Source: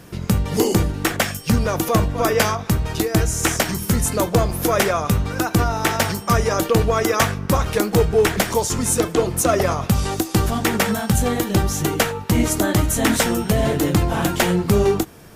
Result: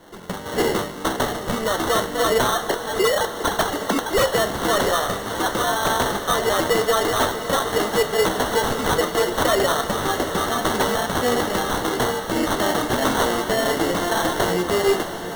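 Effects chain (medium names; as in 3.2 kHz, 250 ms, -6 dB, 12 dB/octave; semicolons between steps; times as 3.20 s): 2.56–4.34 s: formants replaced by sine waves; high-pass 400 Hz 12 dB/octave; level rider; in parallel at 0 dB: peak limiter -13 dBFS, peak gain reduction 12 dB; on the sum: flange 1.7 Hz, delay 2.9 ms, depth 2.2 ms, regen -70%; sample-and-hold 18×; flange 0.28 Hz, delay 9.5 ms, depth 9.3 ms, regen +67%; wavefolder -14.5 dBFS; on a send: echo that smears into a reverb 693 ms, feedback 68%, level -10.5 dB; on the sum: trim +2.5 dB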